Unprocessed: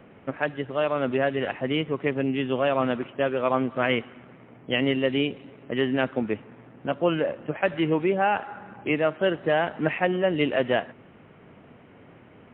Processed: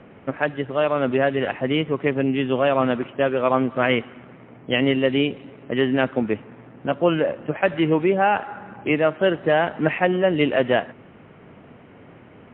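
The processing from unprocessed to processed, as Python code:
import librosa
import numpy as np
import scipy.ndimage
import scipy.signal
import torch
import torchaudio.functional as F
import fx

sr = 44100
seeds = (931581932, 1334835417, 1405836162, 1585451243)

y = fx.air_absorb(x, sr, metres=82.0)
y = y * 10.0 ** (4.5 / 20.0)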